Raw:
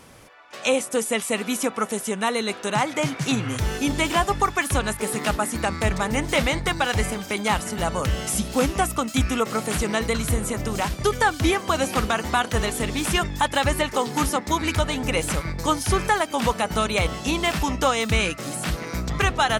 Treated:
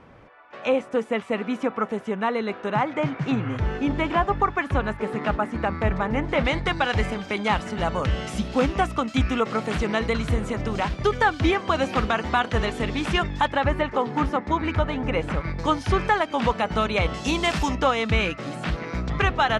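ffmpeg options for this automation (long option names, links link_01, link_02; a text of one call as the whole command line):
ffmpeg -i in.wav -af "asetnsamples=nb_out_samples=441:pad=0,asendcmd='6.45 lowpass f 3500;13.52 lowpass f 2000;15.44 lowpass f 3300;17.14 lowpass f 7000;17.75 lowpass f 3200',lowpass=1900" out.wav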